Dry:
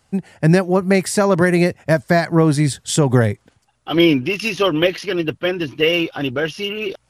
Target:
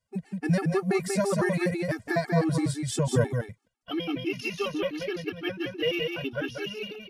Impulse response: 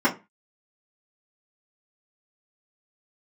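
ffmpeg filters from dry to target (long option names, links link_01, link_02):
-filter_complex "[0:a]agate=range=-11dB:threshold=-37dB:ratio=16:detection=peak,asettb=1/sr,asplit=3[link_01][link_02][link_03];[link_01]atrim=end=3.234[link_04];[link_02]atrim=start=3.23:end=5.32,asetpts=PTS-STARTPTS,afade=type=in:duration=0.004:curve=qsin,afade=type=out:start_time=2.086:duration=0.004:curve=qsin,acompressor=threshold=-16dB:ratio=6[link_05];[link_03]atrim=start=5.316[link_06];[link_04][link_05]acrossfade=duration=0.004:curve1=hsin:curve2=qsin[link_07];[link_07][link_06]acrossfade=duration=0.004:curve1=qsin:curve2=hsin,aecho=1:1:190:0.631,afftfilt=real='re*gt(sin(2*PI*6*pts/sr)*(1-2*mod(floor(b*sr/1024/230),2)),0)':imag='im*gt(sin(2*PI*6*pts/sr)*(1-2*mod(floor(b*sr/1024/230),2)),0)':win_size=1024:overlap=0.75,volume=-8.5dB"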